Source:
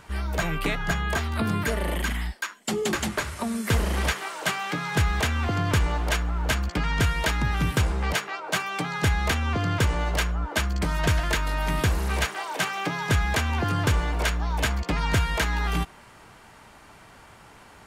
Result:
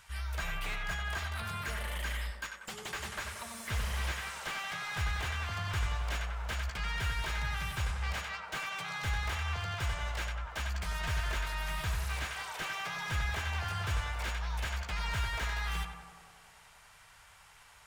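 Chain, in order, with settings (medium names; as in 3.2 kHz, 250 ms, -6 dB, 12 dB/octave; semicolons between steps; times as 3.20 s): amplifier tone stack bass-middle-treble 10-0-10; band-stop 4.4 kHz, Q 29; tape echo 93 ms, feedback 87%, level -4 dB, low-pass 1.4 kHz; slew-rate limiter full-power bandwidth 52 Hz; trim -2 dB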